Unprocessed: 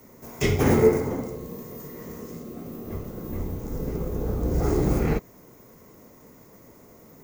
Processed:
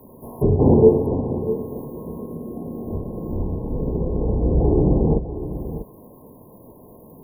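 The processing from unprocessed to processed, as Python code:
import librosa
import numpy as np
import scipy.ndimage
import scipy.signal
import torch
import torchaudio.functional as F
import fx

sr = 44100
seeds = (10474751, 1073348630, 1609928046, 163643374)

p1 = fx.env_lowpass_down(x, sr, base_hz=890.0, full_db=-19.5)
p2 = fx.dynamic_eq(p1, sr, hz=1700.0, q=1.0, threshold_db=-47.0, ratio=4.0, max_db=-6)
p3 = fx.brickwall_bandstop(p2, sr, low_hz=1100.0, high_hz=9600.0)
p4 = p3 + fx.echo_single(p3, sr, ms=644, db=-12.0, dry=0)
y = p4 * librosa.db_to_amplitude(6.0)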